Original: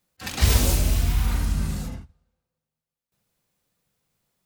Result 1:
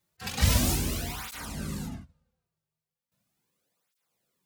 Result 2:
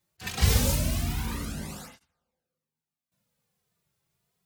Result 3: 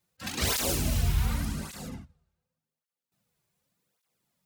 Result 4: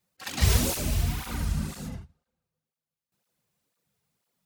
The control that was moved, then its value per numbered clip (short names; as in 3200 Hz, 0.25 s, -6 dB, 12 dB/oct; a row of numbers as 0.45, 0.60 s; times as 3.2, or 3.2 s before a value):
tape flanging out of phase, nulls at: 0.38, 0.25, 0.87, 2 Hz